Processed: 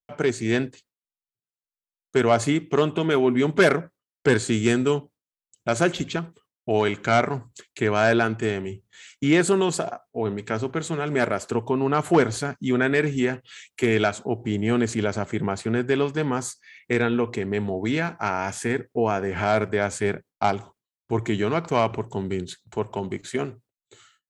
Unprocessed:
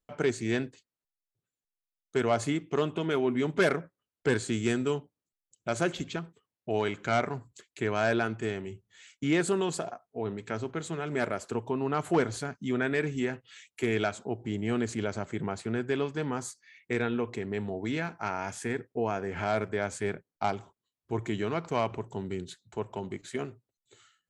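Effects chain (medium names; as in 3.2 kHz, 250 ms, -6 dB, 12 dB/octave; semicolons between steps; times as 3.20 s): gate with hold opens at -54 dBFS; level rider gain up to 3 dB; trim +4.5 dB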